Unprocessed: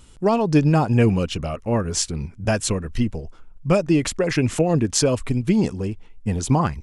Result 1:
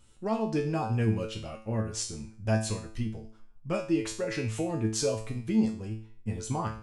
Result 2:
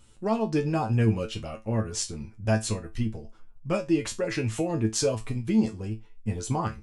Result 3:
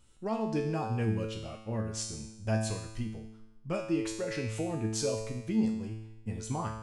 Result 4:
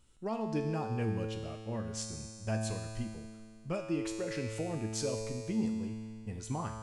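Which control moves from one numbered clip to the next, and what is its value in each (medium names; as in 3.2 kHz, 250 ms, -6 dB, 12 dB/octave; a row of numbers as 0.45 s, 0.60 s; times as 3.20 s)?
feedback comb, decay: 0.44 s, 0.2 s, 0.92 s, 2.2 s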